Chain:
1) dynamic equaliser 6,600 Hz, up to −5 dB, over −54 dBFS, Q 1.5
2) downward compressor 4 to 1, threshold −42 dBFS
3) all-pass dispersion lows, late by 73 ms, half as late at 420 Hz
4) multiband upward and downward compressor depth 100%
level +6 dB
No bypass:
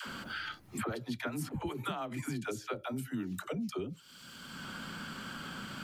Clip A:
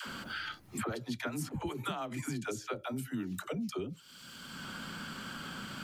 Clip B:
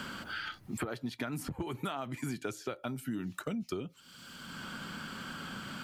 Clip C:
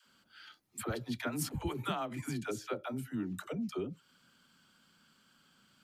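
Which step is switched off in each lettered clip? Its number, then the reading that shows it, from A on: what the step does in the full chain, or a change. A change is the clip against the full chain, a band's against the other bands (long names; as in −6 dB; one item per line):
1, 8 kHz band +2.5 dB
3, change in crest factor +3.0 dB
4, change in crest factor +3.5 dB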